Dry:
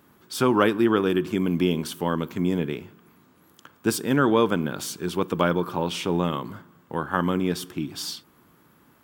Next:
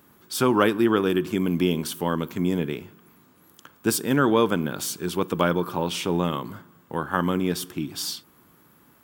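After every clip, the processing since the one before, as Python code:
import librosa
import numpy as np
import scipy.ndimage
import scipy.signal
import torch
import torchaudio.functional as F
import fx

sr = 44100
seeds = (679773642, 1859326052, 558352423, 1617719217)

y = fx.high_shelf(x, sr, hz=7300.0, db=6.5)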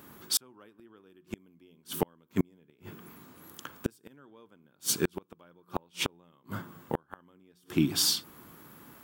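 y = fx.hum_notches(x, sr, base_hz=60, count=3)
y = fx.gate_flip(y, sr, shuts_db=-17.0, range_db=-40)
y = F.gain(torch.from_numpy(y), 4.5).numpy()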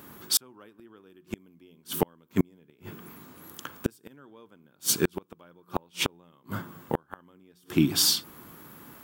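y = fx.peak_eq(x, sr, hz=14000.0, db=3.0, octaves=0.25)
y = F.gain(torch.from_numpy(y), 3.5).numpy()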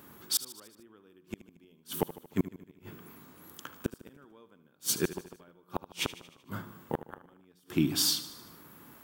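y = fx.echo_feedback(x, sr, ms=76, feedback_pct=58, wet_db=-15.0)
y = F.gain(torch.from_numpy(y), -5.0).numpy()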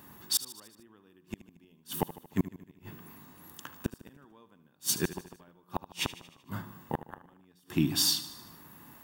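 y = x + 0.37 * np.pad(x, (int(1.1 * sr / 1000.0), 0))[:len(x)]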